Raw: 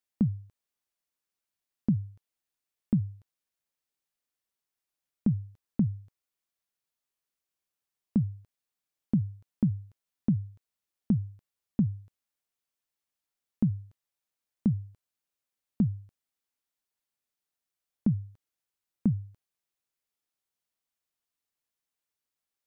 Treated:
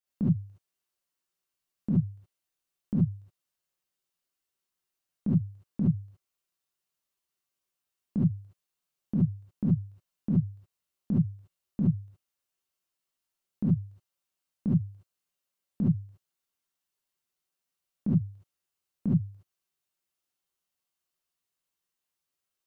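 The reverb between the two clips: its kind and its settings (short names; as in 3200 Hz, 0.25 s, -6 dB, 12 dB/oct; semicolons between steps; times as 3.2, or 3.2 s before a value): non-linear reverb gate 90 ms rising, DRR -7 dB; gain -6 dB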